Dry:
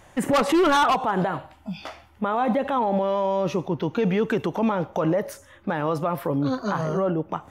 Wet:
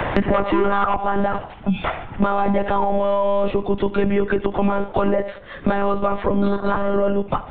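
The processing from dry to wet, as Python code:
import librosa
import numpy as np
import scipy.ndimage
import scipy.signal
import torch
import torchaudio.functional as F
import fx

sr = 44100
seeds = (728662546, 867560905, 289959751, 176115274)

p1 = fx.env_lowpass_down(x, sr, base_hz=2000.0, full_db=-16.5)
p2 = fx.lpc_monotone(p1, sr, seeds[0], pitch_hz=200.0, order=16)
p3 = p2 + fx.echo_single(p2, sr, ms=75, db=-20.0, dry=0)
p4 = fx.band_squash(p3, sr, depth_pct=100)
y = F.gain(torch.from_numpy(p4), 3.5).numpy()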